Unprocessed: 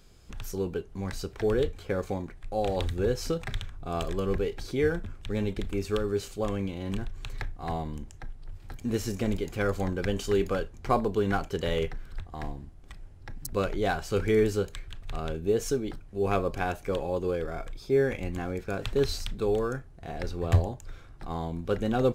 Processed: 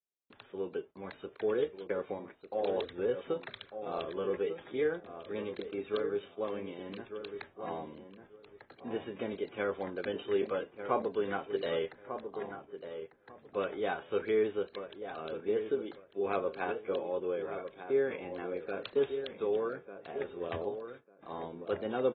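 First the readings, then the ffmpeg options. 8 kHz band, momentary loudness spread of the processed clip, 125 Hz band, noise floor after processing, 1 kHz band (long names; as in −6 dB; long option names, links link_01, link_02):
below −35 dB, 12 LU, −19.5 dB, −63 dBFS, −5.5 dB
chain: -filter_complex "[0:a]agate=range=-38dB:threshold=-41dB:ratio=16:detection=peak,highpass=400,equalizer=frequency=740:width_type=o:width=0.23:gain=-4.5,acrossover=split=800[link_01][link_02];[link_01]acontrast=27[link_03];[link_03][link_02]amix=inputs=2:normalize=0,asplit=2[link_04][link_05];[link_05]adelay=1197,lowpass=frequency=1500:poles=1,volume=-8.5dB,asplit=2[link_06][link_07];[link_07]adelay=1197,lowpass=frequency=1500:poles=1,volume=0.2,asplit=2[link_08][link_09];[link_09]adelay=1197,lowpass=frequency=1500:poles=1,volume=0.2[link_10];[link_04][link_06][link_08][link_10]amix=inputs=4:normalize=0,volume=-7dB" -ar 32000 -c:a aac -b:a 16k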